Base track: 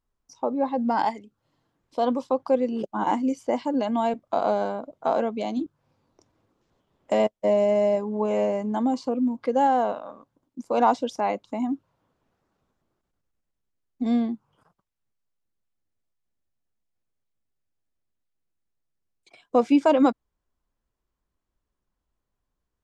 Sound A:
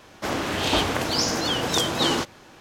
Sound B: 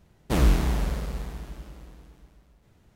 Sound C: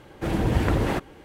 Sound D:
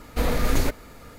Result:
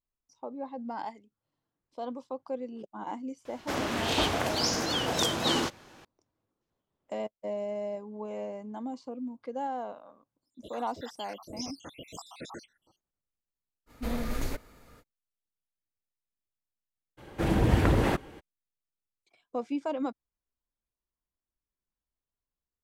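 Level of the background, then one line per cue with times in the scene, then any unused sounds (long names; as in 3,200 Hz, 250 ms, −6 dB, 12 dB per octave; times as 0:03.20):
base track −13.5 dB
0:03.45: mix in A −5 dB
0:10.41: mix in A −15 dB, fades 0.05 s + time-frequency cells dropped at random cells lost 80%
0:13.86: mix in D −11 dB, fades 0.05 s
0:17.17: mix in C −1 dB, fades 0.02 s
not used: B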